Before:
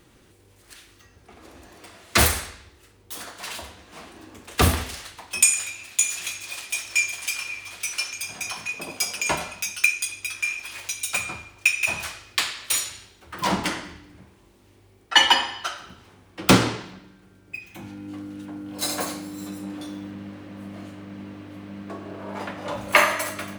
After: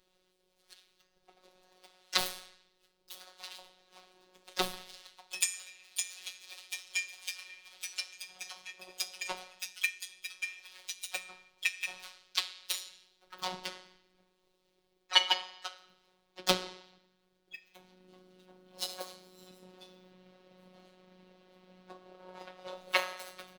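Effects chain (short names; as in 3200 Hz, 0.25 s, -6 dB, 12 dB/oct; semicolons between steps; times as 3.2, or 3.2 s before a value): graphic EQ 125/250/500/2000/4000/8000 Hz -8/-8/+5/-4/+9/-4 dB; harmoniser -5 st -11 dB, +5 st -13 dB; transient shaper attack +7 dB, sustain -1 dB; robotiser 184 Hz; gain -16 dB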